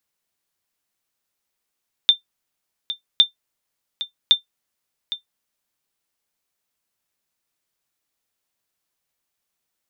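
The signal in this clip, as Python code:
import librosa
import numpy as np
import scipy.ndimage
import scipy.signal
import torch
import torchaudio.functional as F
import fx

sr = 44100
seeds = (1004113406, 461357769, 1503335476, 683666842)

y = fx.sonar_ping(sr, hz=3580.0, decay_s=0.12, every_s=1.11, pings=3, echo_s=0.81, echo_db=-14.0, level_db=-3.5)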